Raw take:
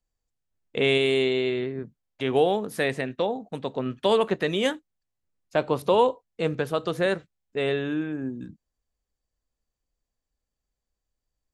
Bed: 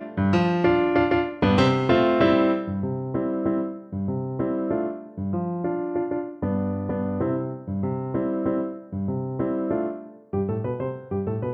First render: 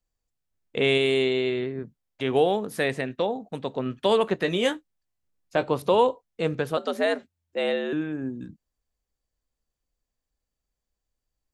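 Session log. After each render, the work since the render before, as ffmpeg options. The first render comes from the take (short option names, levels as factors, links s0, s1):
-filter_complex "[0:a]asettb=1/sr,asplit=3[s0][s1][s2];[s0]atrim=end=4.374[s3];[s1]atrim=start=4.37:end=5.64,asetpts=PTS-STARTPTS,afade=t=in:d=0.004:c=qsin,afade=t=out:st=1.266:d=0.004:c=qsin,asplit=2[s4][s5];[s5]adelay=17,volume=0.376[s6];[s4][s6]amix=inputs=2:normalize=0,atrim=end_sample=56007[s7];[s2]atrim=start=5.636[s8];[s3][s7]acrossfade=d=0.004:c1=hsin:c2=qsin[s9];[s9][s8]acrossfade=d=0.004:c1=qsin:c2=hsin,asettb=1/sr,asplit=3[s10][s11][s12];[s10]atrim=end=6.774[s13];[s11]atrim=start=6.77:end=7.93,asetpts=PTS-STARTPTS,afade=t=in:d=0.004:c=qsin,afade=t=out:st=1.156:d=0.004:c=qsin,afreqshift=84[s14];[s12]atrim=start=7.926[s15];[s13][s14]acrossfade=d=0.004:c1=hsin:c2=qsin[s16];[s16][s15]acrossfade=d=0.004:c1=qsin:c2=hsin"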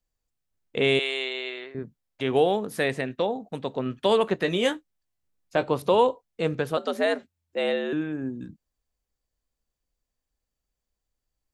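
-filter_complex "[0:a]asettb=1/sr,asplit=3[s0][s1][s2];[s0]atrim=end=0.994[s3];[s1]atrim=start=0.99:end=1.75,asetpts=PTS-STARTPTS,afade=t=in:d=0.004:c=qsin,afade=t=out:st=0.756:d=0.004:c=qsin,highpass=770,lowpass=7600[s4];[s2]atrim=start=1.746[s5];[s3][s4]acrossfade=d=0.004:c1=hsin:c2=qsin[s6];[s6][s5]acrossfade=d=0.004:c1=qsin:c2=hsin"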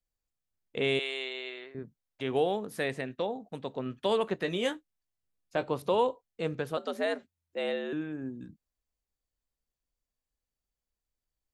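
-af "volume=0.473"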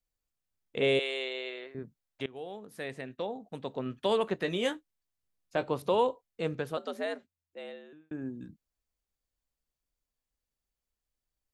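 -filter_complex "[0:a]asettb=1/sr,asplit=3[s0][s1][s2];[s0]atrim=end=0.824[s3];[s1]atrim=start=0.82:end=1.67,asetpts=PTS-STARTPTS,afade=t=in:d=0.004:c=qsin,afade=t=out:st=0.846:d=0.004:c=qsin,equalizer=f=530:t=o:w=0.37:g=11[s4];[s2]atrim=start=1.666[s5];[s3][s4]acrossfade=d=0.004:c1=hsin:c2=qsin[s6];[s6][s5]acrossfade=d=0.004:c1=qsin:c2=hsin,asplit=3[s7][s8][s9];[s7]atrim=end=2.26,asetpts=PTS-STARTPTS,afade=t=out:st=2.256:d=0.004:c=hsin:silence=0.0891251[s10];[s8]atrim=start=2.26:end=8.11,asetpts=PTS-STARTPTS,afade=t=in:d=1.48:silence=0.0891251,afade=t=out:st=4.21:d=1.64[s11];[s9]atrim=start=8.11,asetpts=PTS-STARTPTS,afade=t=in:d=0.004:c=hsin[s12];[s10][s11][s12]concat=n=3:v=0:a=1"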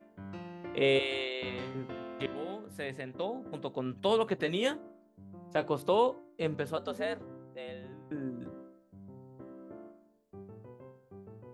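-filter_complex "[1:a]volume=0.0668[s0];[0:a][s0]amix=inputs=2:normalize=0"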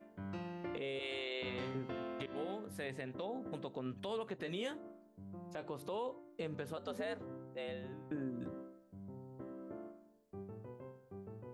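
-af "acompressor=threshold=0.0141:ratio=2,alimiter=level_in=2.24:limit=0.0631:level=0:latency=1:release=111,volume=0.447"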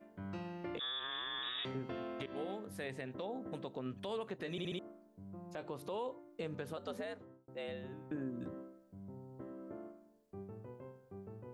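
-filter_complex "[0:a]asettb=1/sr,asplit=3[s0][s1][s2];[s0]atrim=end=0.794[s3];[s1]atrim=start=0.79:end=1.65,asetpts=PTS-STARTPTS,afade=t=in:d=0.004:c=qsin,afade=t=out:st=0.856:d=0.004:c=qsin,lowpass=f=3300:t=q:w=0.5098,lowpass=f=3300:t=q:w=0.6013,lowpass=f=3300:t=q:w=0.9,lowpass=f=3300:t=q:w=2.563,afreqshift=-3900[s4];[s2]atrim=start=1.646[s5];[s3][s4]acrossfade=d=0.004:c1=hsin:c2=qsin[s6];[s6][s5]acrossfade=d=0.004:c1=qsin:c2=hsin,asplit=6[s7][s8][s9][s10][s11][s12];[s7]atrim=end=4.582[s13];[s8]atrim=start=4.508:end=4.582[s14];[s9]atrim=start=4.508:end=4.582[s15];[s10]atrim=start=4.508:end=4.582[s16];[s11]atrim=start=4.788:end=7.48,asetpts=PTS-STARTPTS,afade=t=out:st=2.122:d=0.57[s17];[s12]atrim=start=7.48,asetpts=PTS-STARTPTS,afade=t=in:d=0.004:c=hsin[s18];[s13][s14]acrossfade=d=0.004:c1=hsin:c2=hsin[s19];[s19][s15]acrossfade=d=0.004:c1=hsin:c2=hsin[s20];[s20][s16]acrossfade=d=0.004:c1=hsin:c2=hsin[s21];[s17][s18]concat=n=2:v=0:a=1[s22];[s21][s22]acrossfade=d=0.004:c1=hsin:c2=hsin"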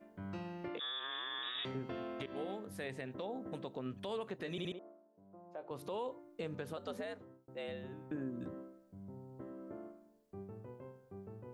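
-filter_complex "[0:a]asettb=1/sr,asplit=3[s0][s1][s2];[s0]atrim=end=0.684[s3];[s1]atrim=start=0.68:end=1.55,asetpts=PTS-STARTPTS,afade=t=in:d=0.004:c=qsin,afade=t=out:st=0.866:d=0.004:c=qsin,highpass=240,lowpass=4900[s4];[s2]atrim=start=1.546[s5];[s3][s4]acrossfade=d=0.004:c1=hsin:c2=qsin[s6];[s6][s5]acrossfade=d=0.004:c1=qsin:c2=hsin,asettb=1/sr,asplit=3[s7][s8][s9];[s7]atrim=end=4.724[s10];[s8]atrim=start=4.72:end=5.71,asetpts=PTS-STARTPTS,afade=t=in:d=0.004:c=qsin,afade=t=out:st=0.986:d=0.004:c=qsin,bandpass=f=660:t=q:w=1.2[s11];[s9]atrim=start=5.706[s12];[s10][s11]acrossfade=d=0.004:c1=hsin:c2=qsin[s13];[s13][s12]acrossfade=d=0.004:c1=qsin:c2=hsin"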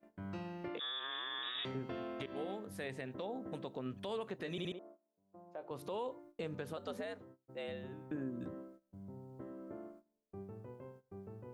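-af "agate=range=0.158:threshold=0.00141:ratio=16:detection=peak"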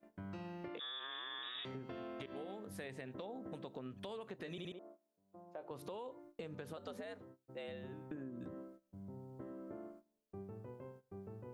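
-af "acompressor=threshold=0.00708:ratio=6"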